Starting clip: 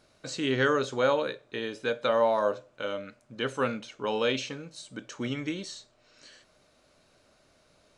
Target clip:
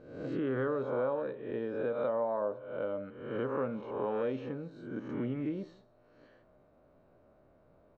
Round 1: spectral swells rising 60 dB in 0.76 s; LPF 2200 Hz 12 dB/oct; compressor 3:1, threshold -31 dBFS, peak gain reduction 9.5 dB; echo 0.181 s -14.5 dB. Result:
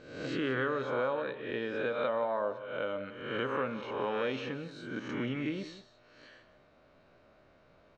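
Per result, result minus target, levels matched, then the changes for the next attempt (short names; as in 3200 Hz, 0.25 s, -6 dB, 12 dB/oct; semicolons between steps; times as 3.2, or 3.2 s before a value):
2000 Hz band +8.5 dB; echo-to-direct +9.5 dB
change: LPF 870 Hz 12 dB/oct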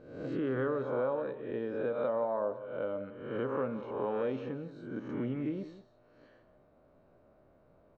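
echo-to-direct +9.5 dB
change: echo 0.181 s -24 dB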